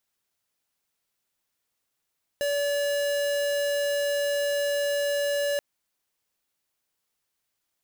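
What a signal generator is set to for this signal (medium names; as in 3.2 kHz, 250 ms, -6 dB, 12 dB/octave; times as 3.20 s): tone square 573 Hz -26 dBFS 3.18 s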